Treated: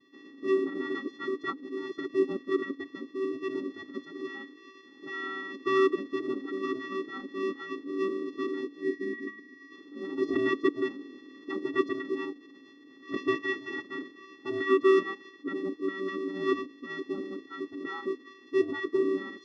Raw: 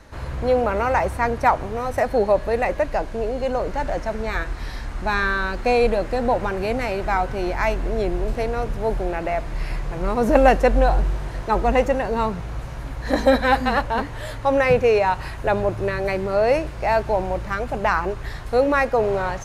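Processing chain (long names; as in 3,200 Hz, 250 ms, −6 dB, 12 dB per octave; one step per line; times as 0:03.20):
channel vocoder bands 8, square 384 Hz
gain on a spectral selection 0:08.83–0:09.72, 500–2,600 Hz −13 dB
formants moved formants −6 semitones
level −8.5 dB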